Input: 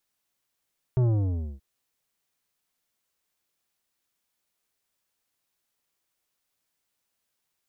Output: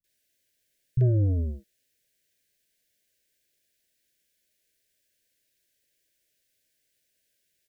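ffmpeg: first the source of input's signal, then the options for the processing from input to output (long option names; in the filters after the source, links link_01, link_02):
-f lavfi -i "aevalsrc='0.1*clip((0.63-t)/0.58,0,1)*tanh(3.55*sin(2*PI*130*0.63/log(65/130)*(exp(log(65/130)*t/0.63)-1)))/tanh(3.55)':duration=0.63:sample_rate=44100"
-filter_complex "[0:a]asplit=2[link_01][link_02];[link_02]alimiter=level_in=4.5dB:limit=-24dB:level=0:latency=1,volume=-4.5dB,volume=-2dB[link_03];[link_01][link_03]amix=inputs=2:normalize=0,asuperstop=centerf=1000:order=20:qfactor=1.2,acrossover=split=190[link_04][link_05];[link_05]adelay=40[link_06];[link_04][link_06]amix=inputs=2:normalize=0"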